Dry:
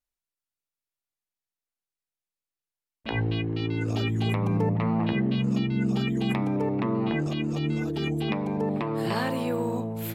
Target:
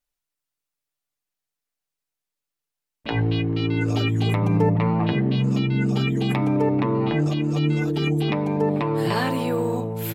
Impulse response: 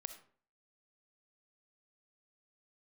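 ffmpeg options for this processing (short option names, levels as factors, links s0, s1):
-af "aecho=1:1:6.8:0.48,volume=1.58"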